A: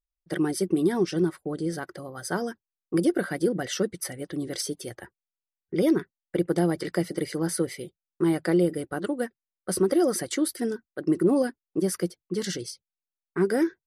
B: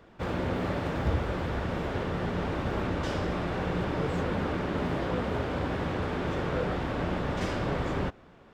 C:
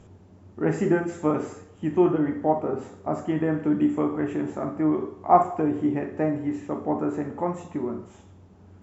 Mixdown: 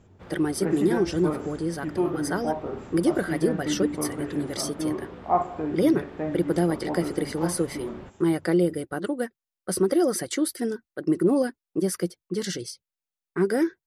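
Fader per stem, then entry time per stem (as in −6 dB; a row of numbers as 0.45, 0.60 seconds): +0.5, −14.0, −5.5 decibels; 0.00, 0.00, 0.00 seconds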